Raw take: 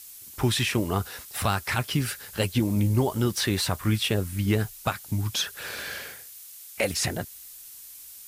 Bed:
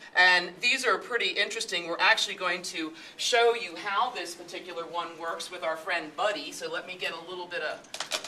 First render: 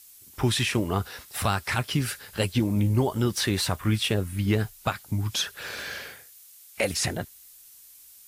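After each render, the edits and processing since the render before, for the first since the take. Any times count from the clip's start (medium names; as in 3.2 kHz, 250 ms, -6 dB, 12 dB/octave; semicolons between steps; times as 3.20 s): noise print and reduce 6 dB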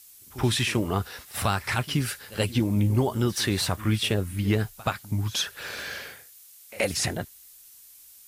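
pre-echo 77 ms -19 dB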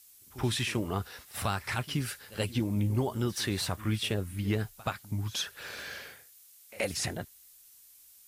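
trim -6 dB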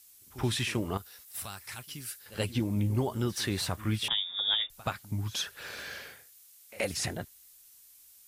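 0.97–2.26 s: pre-emphasis filter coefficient 0.8; 4.08–4.70 s: frequency inversion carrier 3.6 kHz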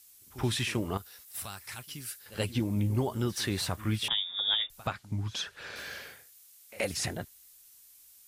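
4.87–5.76 s: distance through air 59 m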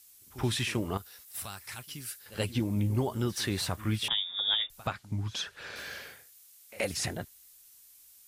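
no audible change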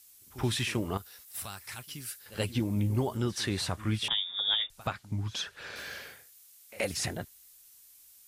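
3.17–4.81 s: low-pass 10 kHz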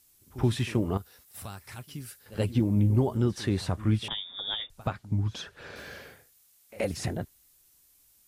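tilt shelf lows +6 dB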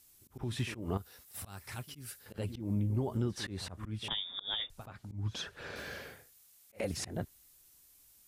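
compression 4:1, threshold -30 dBFS, peak gain reduction 10 dB; slow attack 148 ms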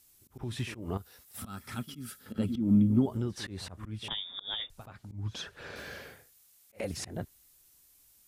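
1.38–3.06 s: small resonant body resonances 230/1300/3300 Hz, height 16 dB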